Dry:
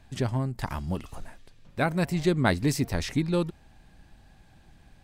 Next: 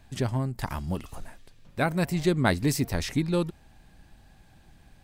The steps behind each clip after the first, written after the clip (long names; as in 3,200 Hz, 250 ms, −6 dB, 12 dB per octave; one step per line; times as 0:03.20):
high-shelf EQ 11,000 Hz +7.5 dB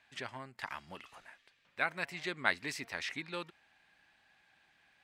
resonant band-pass 2,100 Hz, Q 1.3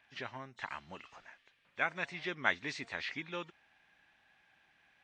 hearing-aid frequency compression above 2,800 Hz 1.5 to 1